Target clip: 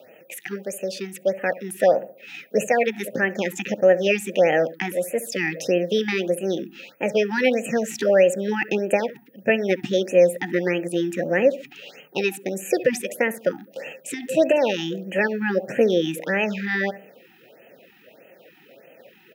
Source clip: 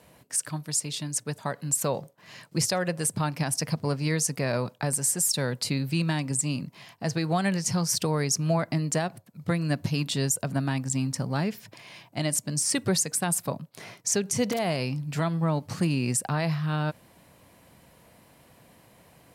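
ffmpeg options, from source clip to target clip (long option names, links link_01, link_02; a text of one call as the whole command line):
ffmpeg -i in.wav -filter_complex "[0:a]aeval=exprs='val(0)+0.00708*sin(2*PI*12000*n/s)':channel_layout=same,asetrate=57191,aresample=44100,atempo=0.771105,asplit=3[link_01][link_02][link_03];[link_01]bandpass=frequency=530:width_type=q:width=8,volume=0dB[link_04];[link_02]bandpass=frequency=1840:width_type=q:width=8,volume=-6dB[link_05];[link_03]bandpass=frequency=2480:width_type=q:width=8,volume=-9dB[link_06];[link_04][link_05][link_06]amix=inputs=3:normalize=0,asplit=2[link_07][link_08];[link_08]adelay=67,lowpass=frequency=870:poles=1,volume=-14dB,asplit=2[link_09][link_10];[link_10]adelay=67,lowpass=frequency=870:poles=1,volume=0.47,asplit=2[link_11][link_12];[link_12]adelay=67,lowpass=frequency=870:poles=1,volume=0.47,asplit=2[link_13][link_14];[link_14]adelay=67,lowpass=frequency=870:poles=1,volume=0.47[link_15];[link_07][link_09][link_11][link_13][link_15]amix=inputs=5:normalize=0,alimiter=level_in=27.5dB:limit=-1dB:release=50:level=0:latency=1,afftfilt=real='re*(1-between(b*sr/1024,500*pow(4600/500,0.5+0.5*sin(2*PI*1.6*pts/sr))/1.41,500*pow(4600/500,0.5+0.5*sin(2*PI*1.6*pts/sr))*1.41))':imag='im*(1-between(b*sr/1024,500*pow(4600/500,0.5+0.5*sin(2*PI*1.6*pts/sr))/1.41,500*pow(4600/500,0.5+0.5*sin(2*PI*1.6*pts/sr))*1.41))':win_size=1024:overlap=0.75,volume=-5.5dB" out.wav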